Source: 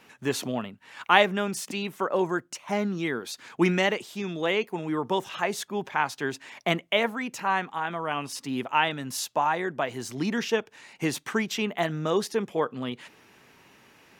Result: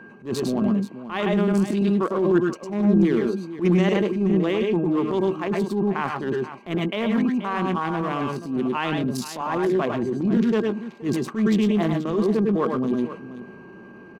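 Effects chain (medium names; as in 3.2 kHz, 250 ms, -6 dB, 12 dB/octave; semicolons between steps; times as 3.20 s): local Wiener filter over 25 samples; whistle 1.6 kHz -52 dBFS; reverse; compression 4:1, threshold -35 dBFS, peak gain reduction 18.5 dB; reverse; small resonant body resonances 210/340/1100 Hz, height 11 dB, ringing for 35 ms; on a send: multi-tap echo 101/106/122/480 ms -8.5/-4.5/-13/-14 dB; on the sum: transient shaper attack -11 dB, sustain +1 dB; trim +8 dB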